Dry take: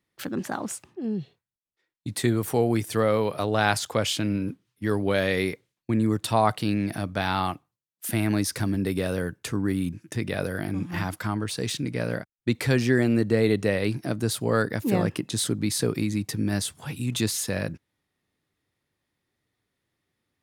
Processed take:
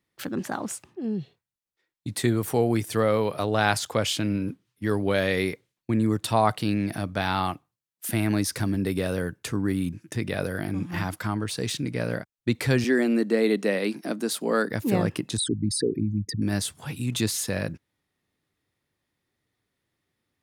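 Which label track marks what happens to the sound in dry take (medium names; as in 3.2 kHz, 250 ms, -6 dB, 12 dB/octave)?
12.840000	14.700000	steep high-pass 180 Hz 48 dB/octave
15.370000	16.420000	resonances exaggerated exponent 3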